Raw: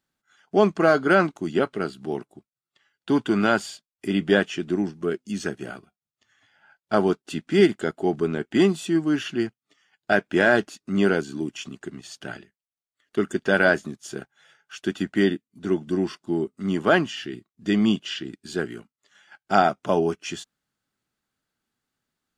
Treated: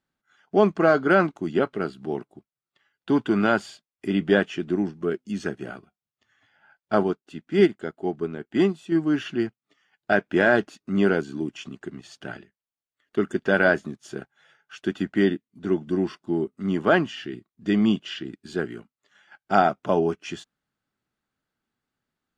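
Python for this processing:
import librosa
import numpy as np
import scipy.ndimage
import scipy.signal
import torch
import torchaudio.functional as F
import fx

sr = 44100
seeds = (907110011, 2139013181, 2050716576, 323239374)

y = fx.high_shelf(x, sr, hz=4800.0, db=-11.5)
y = fx.upward_expand(y, sr, threshold_db=-30.0, expansion=1.5, at=(7.03, 8.92))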